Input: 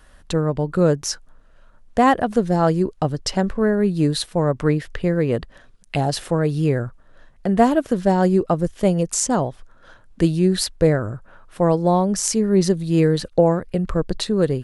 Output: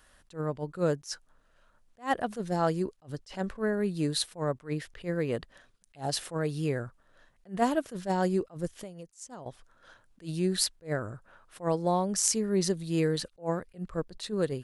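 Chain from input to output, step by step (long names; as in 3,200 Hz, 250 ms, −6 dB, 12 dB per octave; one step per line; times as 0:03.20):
spectral tilt +1.5 dB per octave
0:08.78–0:09.46: downward compressor 10 to 1, threshold −32 dBFS, peak gain reduction 18 dB
level that may rise only so fast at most 270 dB per second
level −8 dB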